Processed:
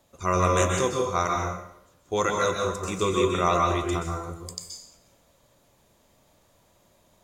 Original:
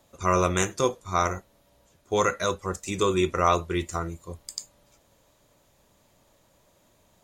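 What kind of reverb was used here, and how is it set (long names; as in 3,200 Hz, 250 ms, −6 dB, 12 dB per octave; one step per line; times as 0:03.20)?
dense smooth reverb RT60 0.76 s, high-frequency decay 0.8×, pre-delay 115 ms, DRR 0.5 dB
level −2 dB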